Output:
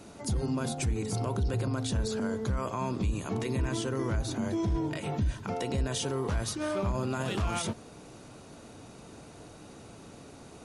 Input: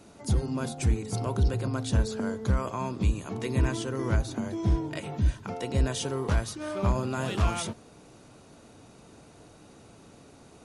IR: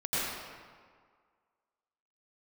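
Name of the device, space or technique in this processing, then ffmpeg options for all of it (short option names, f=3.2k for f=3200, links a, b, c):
stacked limiters: -af "alimiter=limit=-22dB:level=0:latency=1:release=31,alimiter=level_in=2dB:limit=-24dB:level=0:latency=1:release=94,volume=-2dB,volume=3.5dB"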